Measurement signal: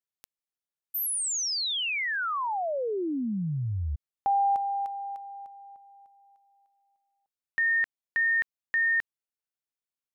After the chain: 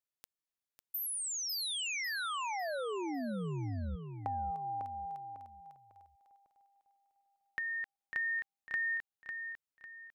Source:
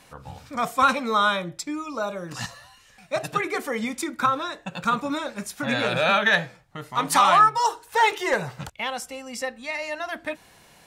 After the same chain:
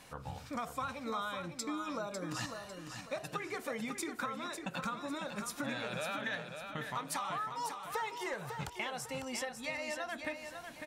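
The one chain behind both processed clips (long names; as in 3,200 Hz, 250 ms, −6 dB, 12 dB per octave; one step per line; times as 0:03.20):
downward compressor 10 to 1, threshold −33 dBFS
on a send: repeating echo 550 ms, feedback 35%, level −7 dB
on the sum: level −3 dB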